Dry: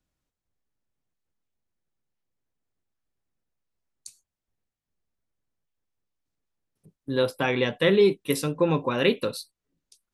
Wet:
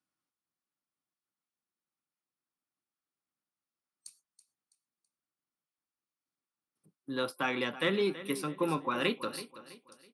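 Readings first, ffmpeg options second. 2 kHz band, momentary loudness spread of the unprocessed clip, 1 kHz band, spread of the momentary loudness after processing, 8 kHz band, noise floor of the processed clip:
-5.5 dB, 11 LU, -3.5 dB, 11 LU, -7.5 dB, under -85 dBFS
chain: -filter_complex "[0:a]superequalizer=7b=0.501:8b=0.631:10b=1.78:14b=1.41:16b=3.55,aecho=1:1:328|656|984:0.178|0.0658|0.0243,acrossover=split=520|3000[s0][s1][s2];[s2]alimiter=limit=0.0841:level=0:latency=1:release=116[s3];[s0][s1][s3]amix=inputs=3:normalize=0,highpass=220,highshelf=f=10000:g=5.5,adynamicsmooth=sensitivity=1:basefreq=6700,volume=0.531"

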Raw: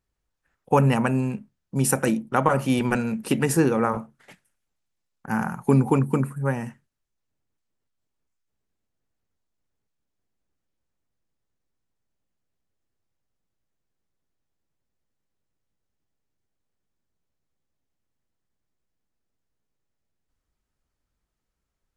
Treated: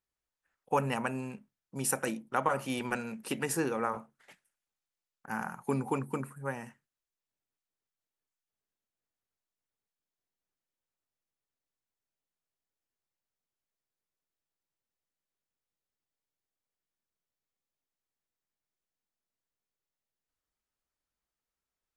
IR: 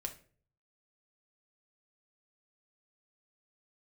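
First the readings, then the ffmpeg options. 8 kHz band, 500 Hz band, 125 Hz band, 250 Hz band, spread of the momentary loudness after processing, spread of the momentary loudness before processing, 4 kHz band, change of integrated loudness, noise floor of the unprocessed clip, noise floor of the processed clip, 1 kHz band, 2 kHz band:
-6.5 dB, -10.0 dB, -16.5 dB, -13.5 dB, 11 LU, 10 LU, -6.5 dB, -11.0 dB, -80 dBFS, under -85 dBFS, -7.5 dB, -7.0 dB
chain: -af "lowshelf=f=300:g=-12,volume=0.473"

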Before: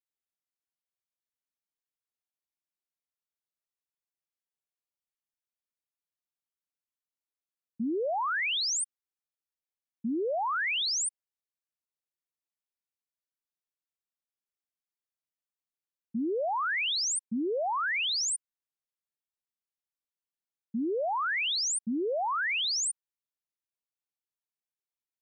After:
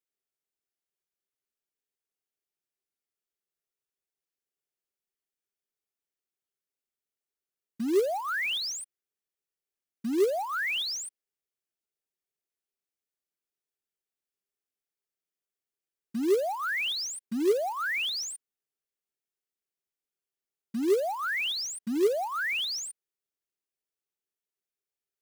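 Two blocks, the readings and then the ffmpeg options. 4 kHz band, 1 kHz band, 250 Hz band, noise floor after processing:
-1.5 dB, -2.5 dB, +2.0 dB, under -85 dBFS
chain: -filter_complex "[0:a]equalizer=f=100:t=o:w=0.33:g=-11,equalizer=f=400:t=o:w=0.33:g=11,equalizer=f=1000:t=o:w=0.33:g=-8,equalizer=f=4000:t=o:w=0.33:g=-3,acrossover=split=5100[s0][s1];[s1]acompressor=threshold=0.00794:ratio=4:attack=1:release=60[s2];[s0][s2]amix=inputs=2:normalize=0,acrusher=bits=4:mode=log:mix=0:aa=0.000001"

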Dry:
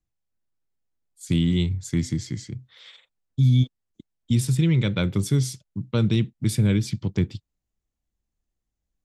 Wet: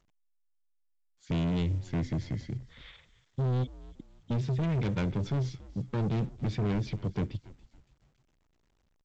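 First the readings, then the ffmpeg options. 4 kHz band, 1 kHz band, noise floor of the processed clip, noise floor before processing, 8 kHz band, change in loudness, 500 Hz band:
-12.5 dB, +1.5 dB, -72 dBFS, -83 dBFS, under -20 dB, -8.5 dB, -4.5 dB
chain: -filter_complex "[0:a]lowpass=2500,asoftclip=type=tanh:threshold=0.0473,asplit=2[s0][s1];[s1]asplit=3[s2][s3][s4];[s2]adelay=281,afreqshift=-78,volume=0.112[s5];[s3]adelay=562,afreqshift=-156,volume=0.038[s6];[s4]adelay=843,afreqshift=-234,volume=0.013[s7];[s5][s6][s7]amix=inputs=3:normalize=0[s8];[s0][s8]amix=inputs=2:normalize=0" -ar 16000 -c:a pcm_alaw

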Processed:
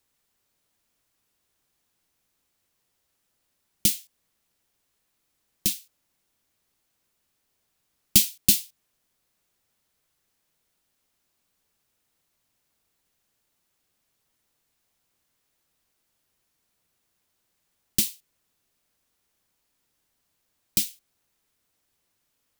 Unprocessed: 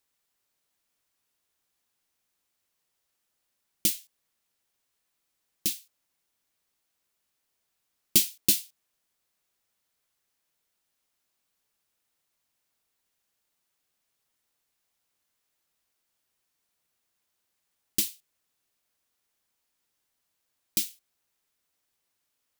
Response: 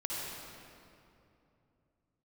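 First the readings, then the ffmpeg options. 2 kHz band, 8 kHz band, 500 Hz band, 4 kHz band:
+3.0 dB, +3.5 dB, 0.0 dB, +3.5 dB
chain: -filter_complex "[0:a]lowshelf=f=380:g=7,acrossover=split=240|1400|3700[s0][s1][s2][s3];[s1]acompressor=threshold=0.00501:ratio=6[s4];[s0][s4][s2][s3]amix=inputs=4:normalize=0,volume=1.5"

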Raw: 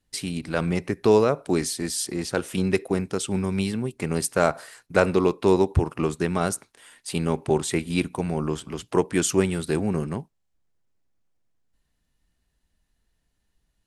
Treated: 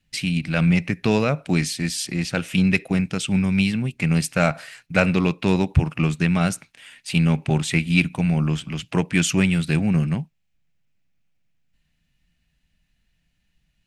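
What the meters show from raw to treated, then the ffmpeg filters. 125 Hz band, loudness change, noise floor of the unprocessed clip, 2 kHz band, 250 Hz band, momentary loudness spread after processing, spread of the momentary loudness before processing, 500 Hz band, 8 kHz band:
+8.0 dB, +3.0 dB, -74 dBFS, +7.0 dB, +5.0 dB, 6 LU, 9 LU, -4.5 dB, -0.5 dB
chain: -filter_complex "[0:a]equalizer=f=160:t=o:w=0.67:g=8,equalizer=f=400:t=o:w=0.67:g=-10,equalizer=f=1000:t=o:w=0.67:g=-6,equalizer=f=2500:t=o:w=0.67:g=10,equalizer=f=10000:t=o:w=0.67:g=-7,asplit=2[s0][s1];[s1]asoftclip=type=hard:threshold=0.211,volume=0.376[s2];[s0][s2]amix=inputs=2:normalize=0"

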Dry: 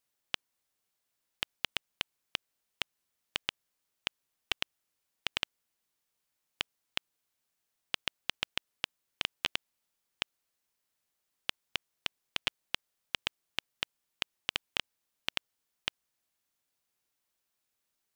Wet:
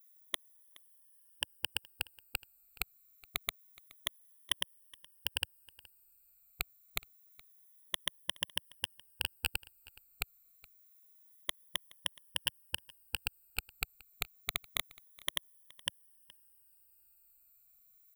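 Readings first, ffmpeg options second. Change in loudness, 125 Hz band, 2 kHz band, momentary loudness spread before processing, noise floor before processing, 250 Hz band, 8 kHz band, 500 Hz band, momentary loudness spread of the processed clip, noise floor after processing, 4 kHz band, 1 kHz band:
-1.5 dB, +3.5 dB, -3.5 dB, 5 LU, -83 dBFS, -5.0 dB, +6.0 dB, -5.0 dB, 22 LU, -67 dBFS, -3.0 dB, -4.0 dB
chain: -af "afftfilt=real='re*pow(10,20/40*sin(2*PI*(1.2*log(max(b,1)*sr/1024/100)/log(2)-(-0.27)*(pts-256)/sr)))':imag='im*pow(10,20/40*sin(2*PI*(1.2*log(max(b,1)*sr/1024/100)/log(2)-(-0.27)*(pts-256)/sr)))':win_size=1024:overlap=0.75,asubboost=boost=6.5:cutoff=100,alimiter=limit=0.282:level=0:latency=1:release=71,aeval=exprs='0.282*(cos(1*acos(clip(val(0)/0.282,-1,1)))-cos(1*PI/2))+0.00708*(cos(7*acos(clip(val(0)/0.282,-1,1)))-cos(7*PI/2))':c=same,aexciter=amount=9.5:drive=3.2:freq=8400,aecho=1:1:421:0.075,volume=0.708"

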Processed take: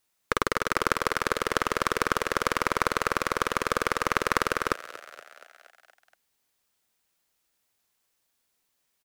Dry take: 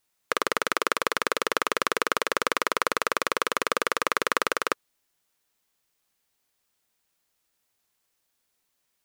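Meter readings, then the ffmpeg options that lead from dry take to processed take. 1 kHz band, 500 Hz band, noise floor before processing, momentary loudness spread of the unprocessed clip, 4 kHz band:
0.0 dB, -0.5 dB, -76 dBFS, 2 LU, -3.5 dB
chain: -filter_complex "[0:a]asplit=7[s0][s1][s2][s3][s4][s5][s6];[s1]adelay=236,afreqshift=43,volume=0.133[s7];[s2]adelay=472,afreqshift=86,volume=0.0841[s8];[s3]adelay=708,afreqshift=129,volume=0.0531[s9];[s4]adelay=944,afreqshift=172,volume=0.0335[s10];[s5]adelay=1180,afreqshift=215,volume=0.0209[s11];[s6]adelay=1416,afreqshift=258,volume=0.0132[s12];[s0][s7][s8][s9][s10][s11][s12]amix=inputs=7:normalize=0,aeval=exprs='0.841*(cos(1*acos(clip(val(0)/0.841,-1,1)))-cos(1*PI/2))+0.133*(cos(4*acos(clip(val(0)/0.841,-1,1)))-cos(4*PI/2))':c=same"

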